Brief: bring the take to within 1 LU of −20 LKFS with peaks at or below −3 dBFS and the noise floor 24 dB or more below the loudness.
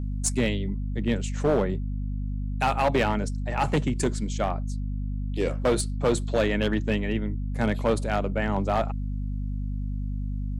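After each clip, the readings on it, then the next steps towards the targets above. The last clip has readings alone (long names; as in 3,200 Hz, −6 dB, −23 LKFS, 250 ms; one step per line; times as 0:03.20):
share of clipped samples 1.3%; peaks flattened at −16.5 dBFS; mains hum 50 Hz; hum harmonics up to 250 Hz; level of the hum −27 dBFS; integrated loudness −27.5 LKFS; sample peak −16.5 dBFS; target loudness −20.0 LKFS
→ clipped peaks rebuilt −16.5 dBFS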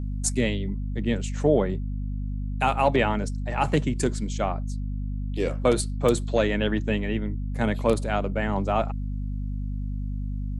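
share of clipped samples 0.0%; mains hum 50 Hz; hum harmonics up to 250 Hz; level of the hum −27 dBFS
→ hum removal 50 Hz, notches 5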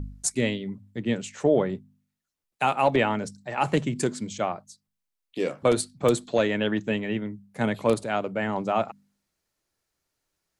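mains hum none found; integrated loudness −26.5 LKFS; sample peak −7.5 dBFS; target loudness −20.0 LKFS
→ level +6.5 dB
brickwall limiter −3 dBFS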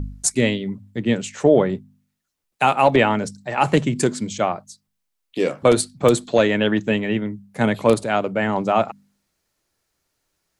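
integrated loudness −20.0 LKFS; sample peak −3.0 dBFS; background noise floor −76 dBFS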